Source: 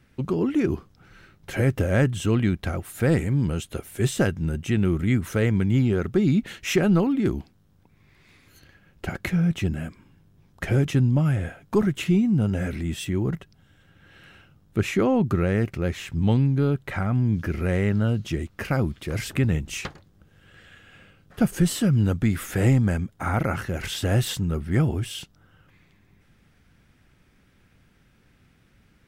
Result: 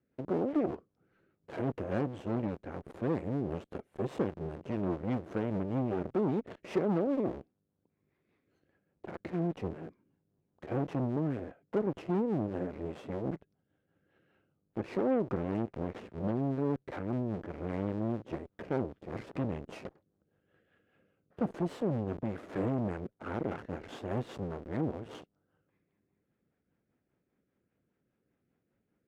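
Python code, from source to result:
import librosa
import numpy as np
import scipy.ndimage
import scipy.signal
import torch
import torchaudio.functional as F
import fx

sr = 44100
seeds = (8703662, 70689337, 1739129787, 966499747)

p1 = fx.schmitt(x, sr, flips_db=-33.5)
p2 = x + (p1 * 10.0 ** (-6.0 / 20.0))
p3 = fx.rotary(p2, sr, hz=5.0)
p4 = fx.cheby_harmonics(p3, sr, harmonics=(7, 8), levels_db=(-26, -16), full_scale_db=-8.0)
p5 = fx.bandpass_q(p4, sr, hz=460.0, q=0.92)
y = p5 * 10.0 ** (-6.5 / 20.0)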